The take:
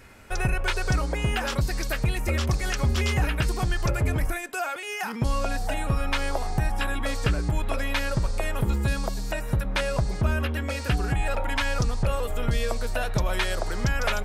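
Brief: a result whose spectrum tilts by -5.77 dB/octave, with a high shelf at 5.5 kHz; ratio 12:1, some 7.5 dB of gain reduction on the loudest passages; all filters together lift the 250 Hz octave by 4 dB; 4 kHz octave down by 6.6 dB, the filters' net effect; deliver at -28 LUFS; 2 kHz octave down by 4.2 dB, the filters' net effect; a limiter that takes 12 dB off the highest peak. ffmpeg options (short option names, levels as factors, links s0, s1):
-af "equalizer=f=250:t=o:g=5.5,equalizer=f=2000:t=o:g=-3.5,equalizer=f=4000:t=o:g=-4.5,highshelf=f=5500:g=-8,acompressor=threshold=0.0501:ratio=12,volume=3.16,alimiter=limit=0.126:level=0:latency=1"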